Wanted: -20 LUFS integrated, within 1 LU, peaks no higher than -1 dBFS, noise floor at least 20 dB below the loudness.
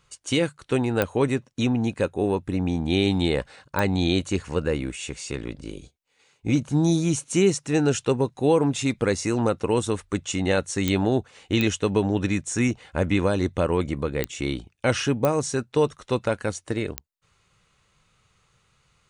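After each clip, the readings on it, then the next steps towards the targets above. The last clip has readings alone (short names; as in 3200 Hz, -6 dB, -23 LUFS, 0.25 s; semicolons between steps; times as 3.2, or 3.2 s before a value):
clicks 7; loudness -24.5 LUFS; peak -7.0 dBFS; loudness target -20.0 LUFS
-> de-click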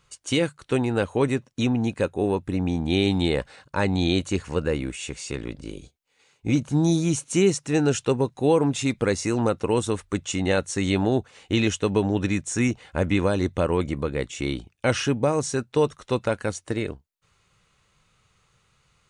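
clicks 0; loudness -24.5 LUFS; peak -8.0 dBFS; loudness target -20.0 LUFS
-> gain +4.5 dB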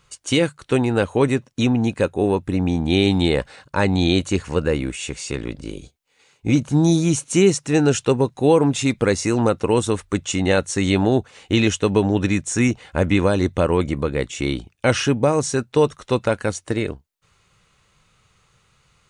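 loudness -20.0 LUFS; peak -3.5 dBFS; noise floor -63 dBFS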